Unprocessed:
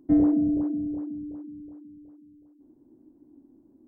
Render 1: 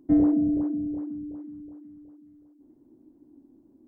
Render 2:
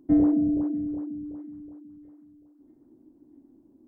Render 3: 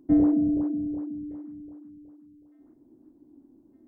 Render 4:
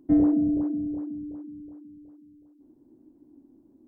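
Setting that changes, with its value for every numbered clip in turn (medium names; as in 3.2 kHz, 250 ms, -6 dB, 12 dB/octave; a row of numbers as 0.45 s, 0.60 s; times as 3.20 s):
feedback echo behind a high-pass, time: 433 ms, 645 ms, 1212 ms, 63 ms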